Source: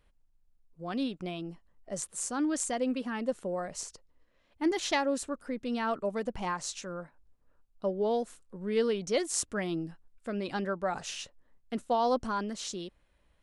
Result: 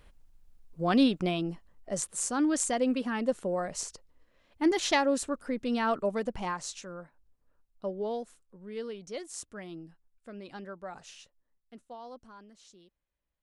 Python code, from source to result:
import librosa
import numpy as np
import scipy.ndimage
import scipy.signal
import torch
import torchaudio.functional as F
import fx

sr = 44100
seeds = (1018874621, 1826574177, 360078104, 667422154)

y = fx.gain(x, sr, db=fx.line((0.84, 10.5), (2.09, 3.0), (6.02, 3.0), (6.92, -3.5), (7.98, -3.5), (8.67, -10.0), (10.98, -10.0), (12.17, -19.0)))